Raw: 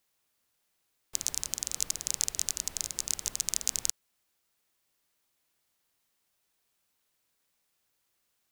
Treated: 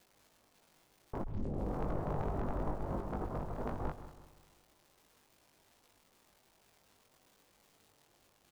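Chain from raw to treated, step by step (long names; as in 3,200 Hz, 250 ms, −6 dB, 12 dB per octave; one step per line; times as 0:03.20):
low-pass filter 1,000 Hz 24 dB per octave
0:02.74–0:03.80: compressor whose output falls as the input rises −54 dBFS, ratio −0.5
surface crackle 450 per second −70 dBFS
0:01.22: tape start 0.53 s
double-tracking delay 20 ms −5 dB
echo machine with several playback heads 65 ms, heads second and third, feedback 48%, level −15 dB
level +15 dB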